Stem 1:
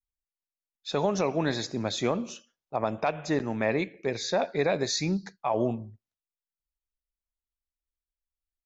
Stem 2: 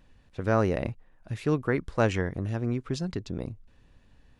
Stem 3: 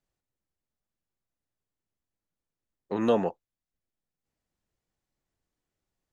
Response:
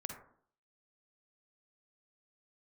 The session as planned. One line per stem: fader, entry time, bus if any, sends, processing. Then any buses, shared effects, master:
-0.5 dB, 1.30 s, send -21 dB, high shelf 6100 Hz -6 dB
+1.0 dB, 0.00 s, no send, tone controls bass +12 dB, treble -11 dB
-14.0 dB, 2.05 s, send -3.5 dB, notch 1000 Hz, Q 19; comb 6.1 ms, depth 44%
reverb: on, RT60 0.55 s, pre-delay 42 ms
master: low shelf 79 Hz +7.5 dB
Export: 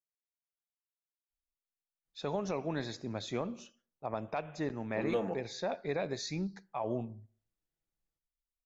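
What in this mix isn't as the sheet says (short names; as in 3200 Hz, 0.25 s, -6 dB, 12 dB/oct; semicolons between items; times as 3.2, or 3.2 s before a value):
stem 1 -0.5 dB -> -9.5 dB; stem 2: muted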